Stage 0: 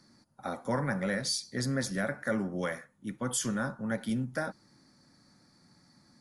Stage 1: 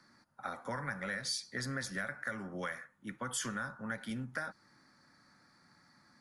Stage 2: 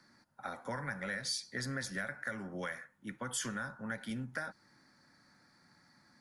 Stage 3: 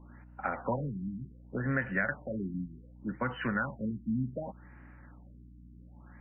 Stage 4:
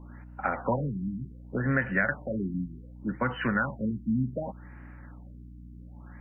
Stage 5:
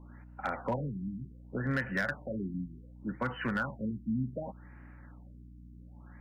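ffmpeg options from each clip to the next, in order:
ffmpeg -i in.wav -filter_complex "[0:a]equalizer=frequency=1500:width=0.71:gain=13,acrossover=split=130|3000[link_01][link_02][link_03];[link_02]acompressor=threshold=-30dB:ratio=6[link_04];[link_01][link_04][link_03]amix=inputs=3:normalize=0,volume=-7dB" out.wav
ffmpeg -i in.wav -af "equalizer=frequency=1200:width=5.7:gain=-5.5" out.wav
ffmpeg -i in.wav -af "aeval=exprs='val(0)+0.001*(sin(2*PI*60*n/s)+sin(2*PI*2*60*n/s)/2+sin(2*PI*3*60*n/s)/3+sin(2*PI*4*60*n/s)/4+sin(2*PI*5*60*n/s)/5)':channel_layout=same,afftfilt=real='re*lt(b*sr/1024,320*pow(3100/320,0.5+0.5*sin(2*PI*0.67*pts/sr)))':imag='im*lt(b*sr/1024,320*pow(3100/320,0.5+0.5*sin(2*PI*0.67*pts/sr)))':win_size=1024:overlap=0.75,volume=8.5dB" out.wav
ffmpeg -i in.wav -af "aeval=exprs='val(0)+0.000794*(sin(2*PI*60*n/s)+sin(2*PI*2*60*n/s)/2+sin(2*PI*3*60*n/s)/3+sin(2*PI*4*60*n/s)/4+sin(2*PI*5*60*n/s)/5)':channel_layout=same,volume=4.5dB" out.wav
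ffmpeg -i in.wav -af "volume=19dB,asoftclip=hard,volume=-19dB,volume=-5dB" out.wav

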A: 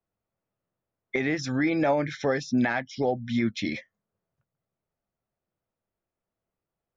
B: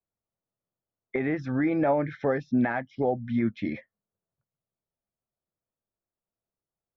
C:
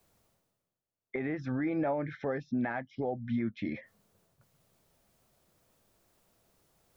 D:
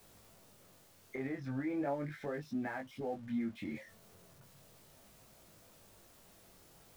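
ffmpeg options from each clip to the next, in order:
ffmpeg -i in.wav -af "agate=range=-7dB:threshold=-42dB:ratio=16:detection=peak,lowpass=1600" out.wav
ffmpeg -i in.wav -af "alimiter=limit=-22dB:level=0:latency=1:release=162,areverse,acompressor=mode=upward:threshold=-48dB:ratio=2.5,areverse,volume=-2dB" out.wav
ffmpeg -i in.wav -af "aeval=exprs='val(0)+0.5*0.00398*sgn(val(0))':channel_layout=same,flanger=delay=19:depth=3.4:speed=0.37,volume=-3.5dB" out.wav

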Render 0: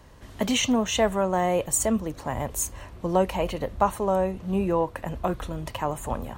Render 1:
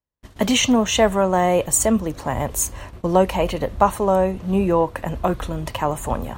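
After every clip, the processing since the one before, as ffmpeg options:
ffmpeg -i in.wav -af "agate=range=-46dB:threshold=-42dB:ratio=16:detection=peak,volume=6dB" out.wav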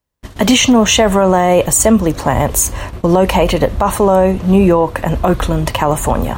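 ffmpeg -i in.wav -af "alimiter=level_in=12.5dB:limit=-1dB:release=50:level=0:latency=1,volume=-1dB" out.wav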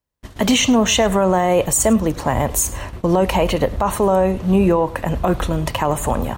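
ffmpeg -i in.wav -af "aecho=1:1:103:0.1,volume=-5dB" out.wav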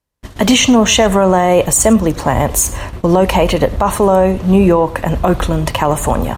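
ffmpeg -i in.wav -af "aresample=32000,aresample=44100,volume=5dB" out.wav

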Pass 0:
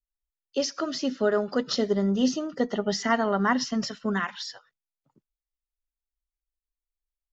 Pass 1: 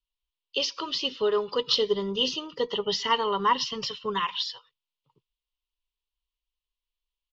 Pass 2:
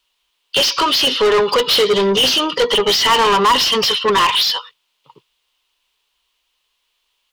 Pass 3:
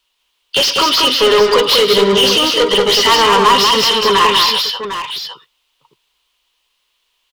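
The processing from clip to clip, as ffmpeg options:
ffmpeg -i in.wav -af "firequalizer=gain_entry='entry(140,0);entry(230,-15);entry(450,4);entry(670,-16);entry(980,9);entry(1500,-11);entry(2900,14);entry(6700,-8);entry(11000,-15)':delay=0.05:min_phase=1" out.wav
ffmpeg -i in.wav -filter_complex "[0:a]asplit=2[link_01][link_02];[link_02]highpass=frequency=720:poles=1,volume=29dB,asoftclip=type=tanh:threshold=-10dB[link_03];[link_01][link_03]amix=inputs=2:normalize=0,lowpass=frequency=4700:poles=1,volume=-6dB,volume=4dB" out.wav
ffmpeg -i in.wav -af "aecho=1:1:109|193|256|752:0.141|0.631|0.1|0.316,volume=1.5dB" out.wav

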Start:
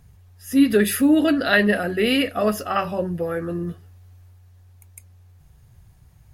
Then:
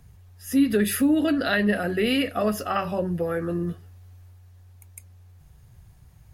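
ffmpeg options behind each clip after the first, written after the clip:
ffmpeg -i in.wav -filter_complex "[0:a]acrossover=split=210[link_01][link_02];[link_02]acompressor=threshold=-23dB:ratio=2.5[link_03];[link_01][link_03]amix=inputs=2:normalize=0" out.wav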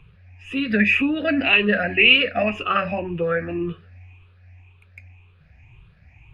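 ffmpeg -i in.wav -af "afftfilt=real='re*pow(10,14/40*sin(2*PI*(0.66*log(max(b,1)*sr/1024/100)/log(2)-(1.9)*(pts-256)/sr)))':imag='im*pow(10,14/40*sin(2*PI*(0.66*log(max(b,1)*sr/1024/100)/log(2)-(1.9)*(pts-256)/sr)))':win_size=1024:overlap=0.75,lowpass=frequency=2500:width_type=q:width=12,volume=-1dB" out.wav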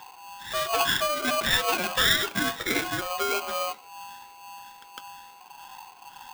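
ffmpeg -i in.wav -af "acompressor=threshold=-45dB:ratio=1.5,aeval=exprs='val(0)*sgn(sin(2*PI*900*n/s))':channel_layout=same,volume=4dB" out.wav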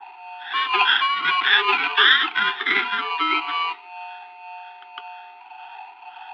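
ffmpeg -i in.wav -af "asuperstop=centerf=650:order=20:qfactor=2.3,highpass=frequency=520:width_type=q:width=0.5412,highpass=frequency=520:width_type=q:width=1.307,lowpass=frequency=3400:width_type=q:width=0.5176,lowpass=frequency=3400:width_type=q:width=0.7071,lowpass=frequency=3400:width_type=q:width=1.932,afreqshift=-90,adynamicequalizer=threshold=0.0126:dfrequency=1800:dqfactor=0.7:tfrequency=1800:tqfactor=0.7:attack=5:release=100:ratio=0.375:range=2:mode=boostabove:tftype=highshelf,volume=7dB" out.wav

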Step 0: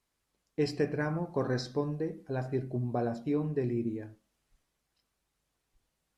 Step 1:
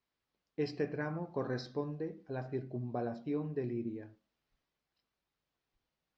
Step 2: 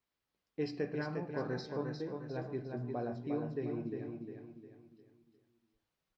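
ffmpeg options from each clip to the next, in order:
ffmpeg -i in.wav -af "lowpass=frequency=5200:width=0.5412,lowpass=frequency=5200:width=1.3066,lowshelf=frequency=65:gain=-10,volume=-5dB" out.wav
ffmpeg -i in.wav -filter_complex "[0:a]asplit=2[link_01][link_02];[link_02]aecho=0:1:354|708|1062|1416|1770:0.562|0.225|0.09|0.036|0.0144[link_03];[link_01][link_03]amix=inputs=2:normalize=0,flanger=delay=9.5:depth=1.2:regen=90:speed=0.41:shape=sinusoidal,volume=3dB" out.wav

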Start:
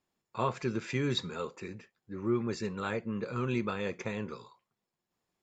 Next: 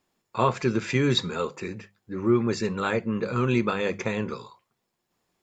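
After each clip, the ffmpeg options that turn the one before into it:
ffmpeg -i in.wav -af "bandreject=frequency=50:width_type=h:width=6,bandreject=frequency=100:width_type=h:width=6,bandreject=frequency=150:width_type=h:width=6,bandreject=frequency=200:width_type=h:width=6,volume=8.5dB" out.wav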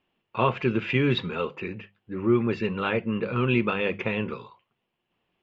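ffmpeg -i in.wav -af "lowpass=frequency=2900:width_type=q:width=6.1,highshelf=frequency=2000:gain=-10" out.wav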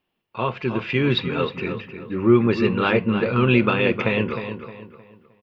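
ffmpeg -i in.wav -filter_complex "[0:a]aexciter=amount=1.8:drive=1.2:freq=4000,dynaudnorm=framelen=410:gausssize=5:maxgain=11.5dB,asplit=2[link_01][link_02];[link_02]adelay=310,lowpass=frequency=3200:poles=1,volume=-9dB,asplit=2[link_03][link_04];[link_04]adelay=310,lowpass=frequency=3200:poles=1,volume=0.36,asplit=2[link_05][link_06];[link_06]adelay=310,lowpass=frequency=3200:poles=1,volume=0.36,asplit=2[link_07][link_08];[link_08]adelay=310,lowpass=frequency=3200:poles=1,volume=0.36[link_09];[link_03][link_05][link_07][link_09]amix=inputs=4:normalize=0[link_10];[link_01][link_10]amix=inputs=2:normalize=0,volume=-2dB" out.wav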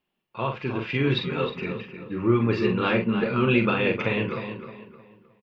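ffmpeg -i in.wav -filter_complex "[0:a]flanger=delay=4.7:depth=2.3:regen=-58:speed=0.62:shape=triangular,asplit=2[link_01][link_02];[link_02]adelay=44,volume=-6dB[link_03];[link_01][link_03]amix=inputs=2:normalize=0" out.wav

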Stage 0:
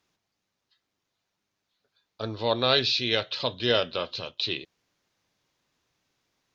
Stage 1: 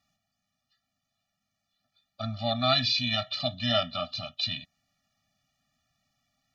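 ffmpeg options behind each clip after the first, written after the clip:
ffmpeg -i in.wav -af "afftfilt=real='re*eq(mod(floor(b*sr/1024/280),2),0)':imag='im*eq(mod(floor(b*sr/1024/280),2),0)':win_size=1024:overlap=0.75,volume=2.5dB" out.wav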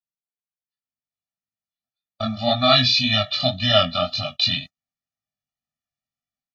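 ffmpeg -i in.wav -af "agate=range=-31dB:threshold=-43dB:ratio=16:detection=peak,dynaudnorm=framelen=580:gausssize=3:maxgain=14dB,flanger=delay=19:depth=4.9:speed=1.9,volume=2dB" out.wav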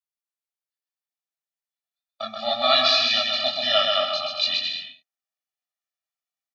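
ffmpeg -i in.wav -filter_complex "[0:a]highpass=530,asplit=2[link_01][link_02];[link_02]aecho=0:1:130|221|284.7|329.3|360.5:0.631|0.398|0.251|0.158|0.1[link_03];[link_01][link_03]amix=inputs=2:normalize=0,volume=-3dB" out.wav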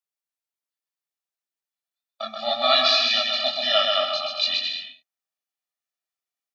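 ffmpeg -i in.wav -af "highpass=200" out.wav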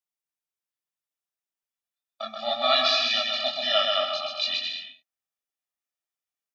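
ffmpeg -i in.wav -af "bandreject=frequency=4300:width=9.3,volume=-2.5dB" out.wav

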